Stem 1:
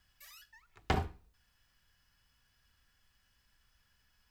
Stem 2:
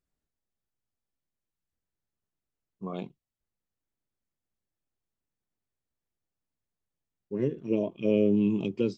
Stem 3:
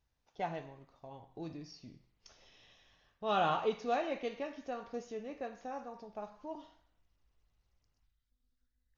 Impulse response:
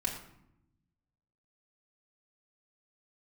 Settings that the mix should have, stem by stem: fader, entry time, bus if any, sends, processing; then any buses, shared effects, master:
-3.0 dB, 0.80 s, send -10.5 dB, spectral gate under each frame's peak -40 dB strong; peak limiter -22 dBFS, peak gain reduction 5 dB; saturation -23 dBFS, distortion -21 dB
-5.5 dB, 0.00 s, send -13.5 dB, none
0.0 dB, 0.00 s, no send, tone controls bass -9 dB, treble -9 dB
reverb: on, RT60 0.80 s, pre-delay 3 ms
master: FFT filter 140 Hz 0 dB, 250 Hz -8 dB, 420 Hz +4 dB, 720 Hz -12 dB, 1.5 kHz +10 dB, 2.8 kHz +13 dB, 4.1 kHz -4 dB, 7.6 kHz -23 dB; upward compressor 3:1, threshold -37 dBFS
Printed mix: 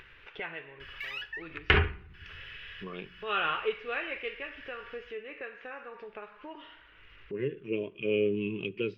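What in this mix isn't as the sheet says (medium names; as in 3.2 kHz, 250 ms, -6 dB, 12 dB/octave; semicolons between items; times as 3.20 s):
stem 1 -3.0 dB -> +9.0 dB; reverb return -8.0 dB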